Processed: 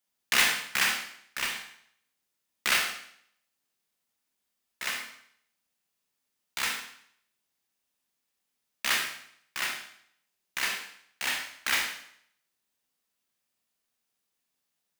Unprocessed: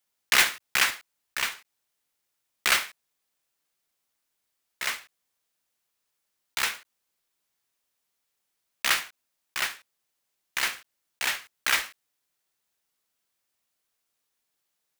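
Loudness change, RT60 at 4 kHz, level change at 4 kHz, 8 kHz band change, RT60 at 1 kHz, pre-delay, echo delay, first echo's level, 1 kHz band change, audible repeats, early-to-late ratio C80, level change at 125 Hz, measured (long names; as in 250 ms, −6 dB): −2.5 dB, 0.65 s, −1.5 dB, −2.0 dB, 0.65 s, 25 ms, no echo audible, no echo audible, −2.5 dB, no echo audible, 8.5 dB, can't be measured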